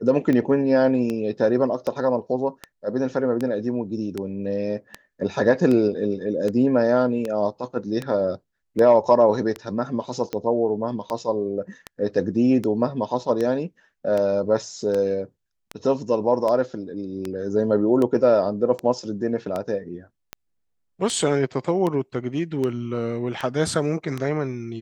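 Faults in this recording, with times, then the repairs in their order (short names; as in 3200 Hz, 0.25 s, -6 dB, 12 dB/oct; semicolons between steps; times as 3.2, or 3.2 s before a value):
tick 78 rpm -14 dBFS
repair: de-click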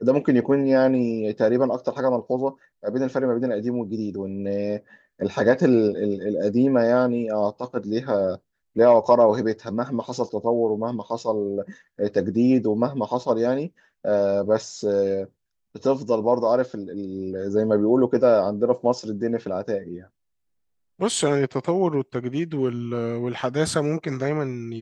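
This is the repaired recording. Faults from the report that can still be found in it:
none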